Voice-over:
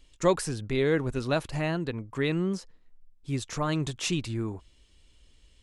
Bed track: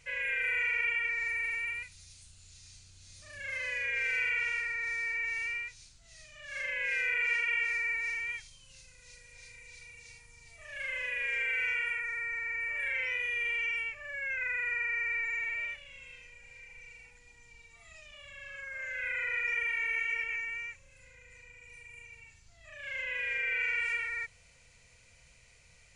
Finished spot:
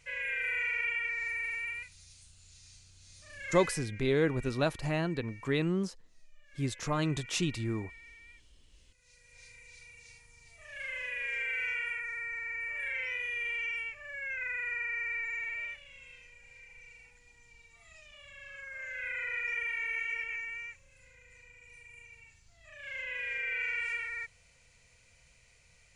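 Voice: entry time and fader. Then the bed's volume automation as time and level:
3.30 s, −2.5 dB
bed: 0:03.61 −2 dB
0:03.91 −19.5 dB
0:08.64 −19.5 dB
0:09.40 −2.5 dB

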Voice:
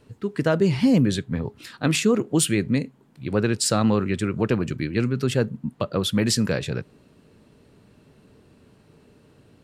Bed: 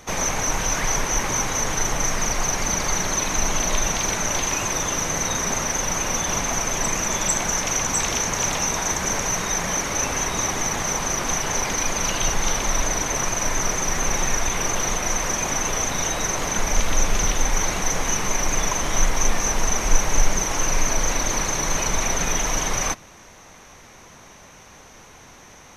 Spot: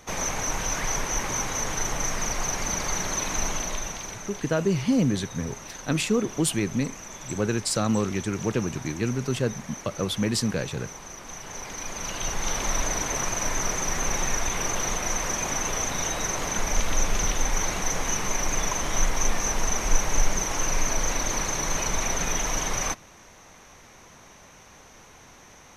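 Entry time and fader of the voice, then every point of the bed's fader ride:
4.05 s, −4.0 dB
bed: 0:03.44 −5 dB
0:04.37 −17 dB
0:11.22 −17 dB
0:12.65 −4 dB

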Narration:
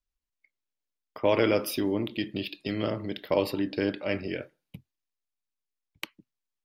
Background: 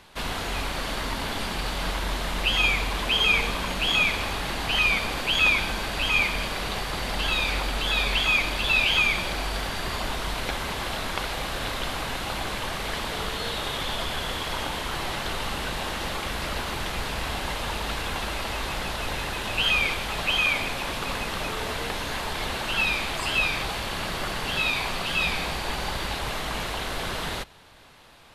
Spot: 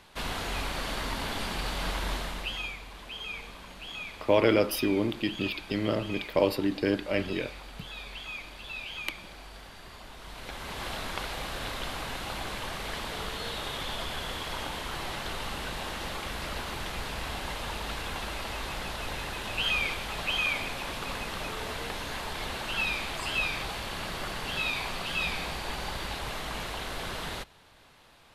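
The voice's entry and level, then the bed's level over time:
3.05 s, +1.0 dB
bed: 0:02.14 −3.5 dB
0:02.79 −17.5 dB
0:10.12 −17.5 dB
0:10.85 −5.5 dB

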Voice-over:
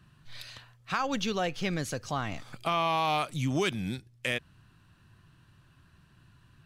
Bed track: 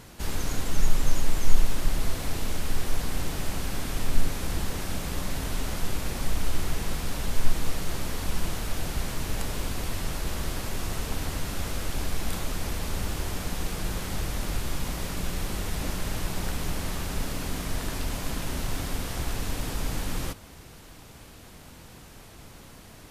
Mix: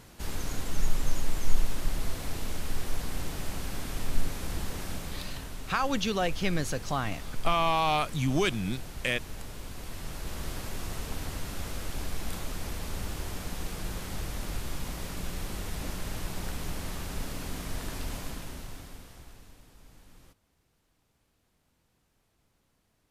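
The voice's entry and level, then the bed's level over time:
4.80 s, +1.5 dB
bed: 0:04.89 −4.5 dB
0:05.59 −11 dB
0:09.62 −11 dB
0:10.49 −5 dB
0:18.16 −5 dB
0:19.67 −25 dB

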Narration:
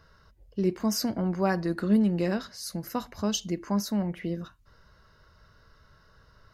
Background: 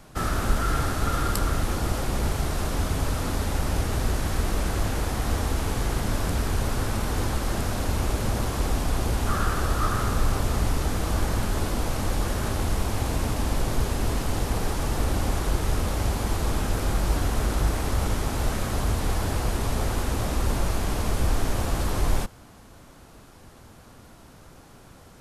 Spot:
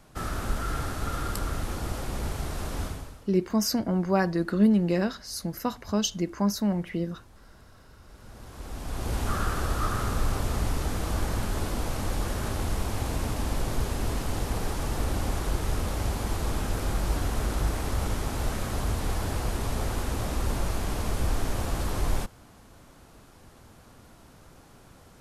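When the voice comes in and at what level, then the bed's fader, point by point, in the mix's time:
2.70 s, +2.0 dB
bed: 0:02.85 −6 dB
0:03.32 −28.5 dB
0:08.01 −28.5 dB
0:09.16 −3.5 dB

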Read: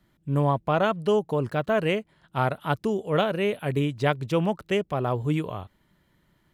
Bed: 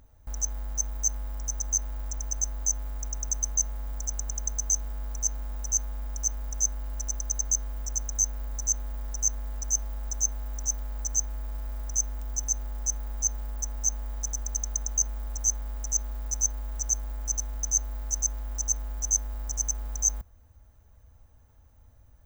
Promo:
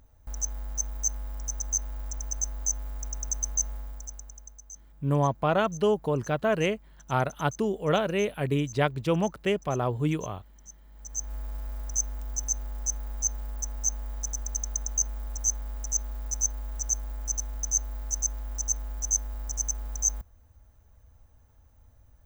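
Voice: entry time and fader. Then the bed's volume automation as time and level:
4.75 s, −1.5 dB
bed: 0:03.74 −1.5 dB
0:04.63 −20 dB
0:10.84 −20 dB
0:11.33 −1 dB

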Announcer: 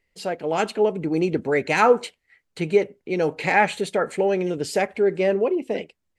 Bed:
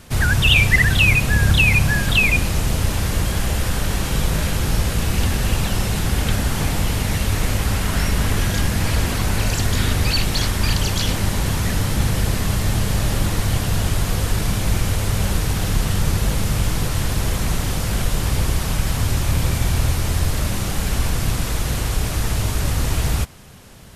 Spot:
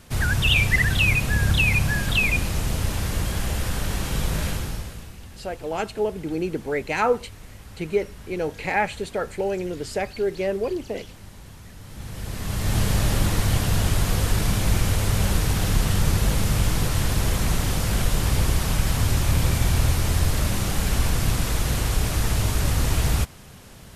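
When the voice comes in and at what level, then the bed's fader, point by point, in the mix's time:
5.20 s, −4.5 dB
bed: 0:04.50 −5 dB
0:05.19 −23 dB
0:11.77 −23 dB
0:12.79 −1.5 dB

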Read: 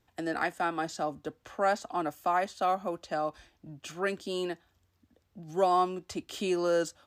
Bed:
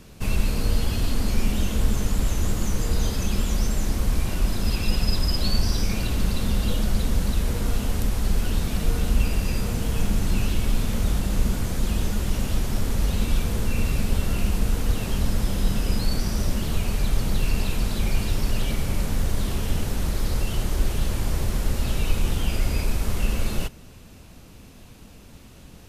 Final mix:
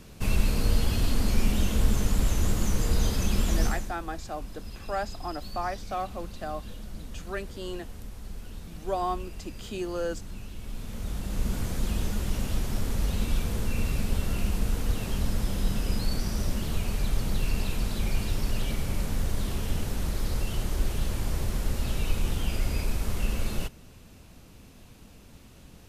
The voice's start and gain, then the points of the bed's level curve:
3.30 s, −4.0 dB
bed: 0:03.66 −1.5 dB
0:03.97 −17.5 dB
0:10.51 −17.5 dB
0:11.59 −4.5 dB

